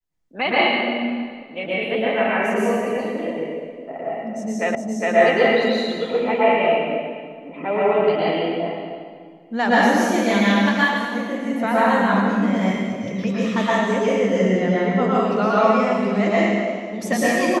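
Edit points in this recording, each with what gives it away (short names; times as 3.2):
4.75 repeat of the last 0.41 s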